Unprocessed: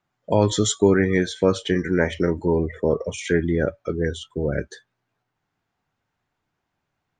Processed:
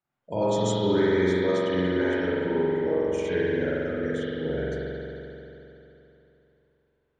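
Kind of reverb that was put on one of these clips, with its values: spring tank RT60 3.2 s, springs 44 ms, chirp 30 ms, DRR -9 dB; gain -13 dB

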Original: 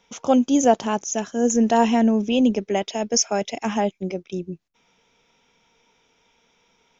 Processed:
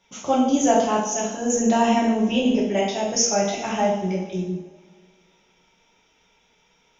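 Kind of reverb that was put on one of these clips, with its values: two-slope reverb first 0.69 s, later 2.2 s, from -17 dB, DRR -6 dB; gain -5.5 dB

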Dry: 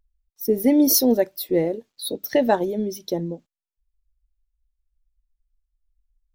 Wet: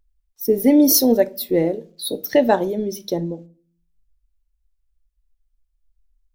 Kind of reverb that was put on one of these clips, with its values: shoebox room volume 290 m³, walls furnished, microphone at 0.35 m; gain +2.5 dB

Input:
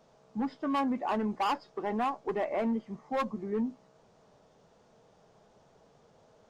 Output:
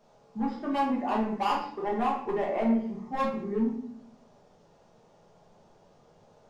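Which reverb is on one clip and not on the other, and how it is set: shoebox room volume 110 m³, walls mixed, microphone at 1.3 m; gain -3.5 dB

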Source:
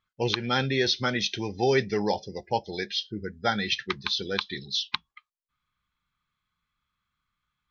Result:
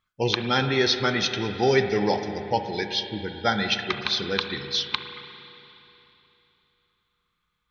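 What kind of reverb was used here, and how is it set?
spring tank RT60 3.2 s, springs 35/58 ms, chirp 50 ms, DRR 6.5 dB; gain +2.5 dB

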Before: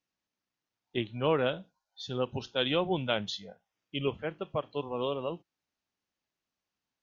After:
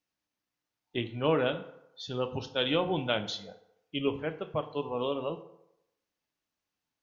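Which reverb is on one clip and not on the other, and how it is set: FDN reverb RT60 0.84 s, low-frequency decay 0.8×, high-frequency decay 0.6×, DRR 8.5 dB

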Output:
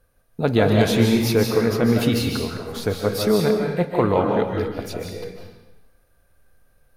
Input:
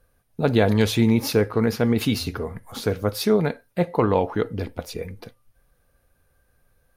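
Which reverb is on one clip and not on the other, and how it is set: digital reverb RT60 1 s, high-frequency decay 0.95×, pre-delay 0.11 s, DRR 1 dB

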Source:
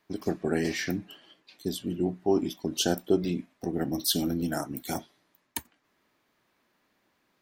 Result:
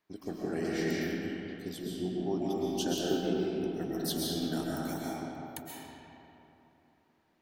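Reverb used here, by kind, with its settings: digital reverb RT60 3.2 s, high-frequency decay 0.55×, pre-delay 90 ms, DRR -5.5 dB; gain -10 dB

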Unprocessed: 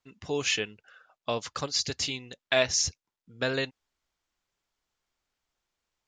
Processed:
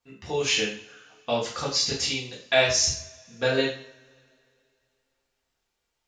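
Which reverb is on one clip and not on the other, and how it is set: two-slope reverb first 0.47 s, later 2.6 s, from -28 dB, DRR -6 dB; gain -2.5 dB

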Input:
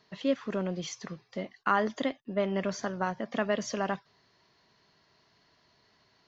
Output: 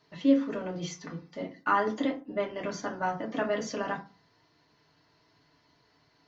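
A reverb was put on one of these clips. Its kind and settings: FDN reverb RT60 0.32 s, low-frequency decay 1.4×, high-frequency decay 0.5×, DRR -2 dB; gain -4 dB

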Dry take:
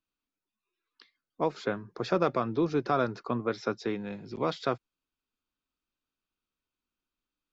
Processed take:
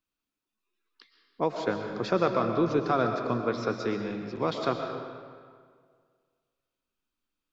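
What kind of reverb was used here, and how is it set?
digital reverb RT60 1.9 s, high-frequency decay 0.75×, pre-delay 80 ms, DRR 4.5 dB; gain +1 dB

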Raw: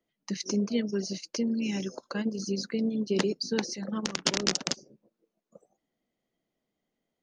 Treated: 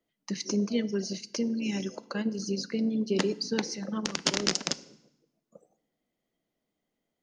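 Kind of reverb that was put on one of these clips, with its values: FDN reverb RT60 0.83 s, low-frequency decay 1.5×, high-frequency decay 0.95×, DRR 16.5 dB

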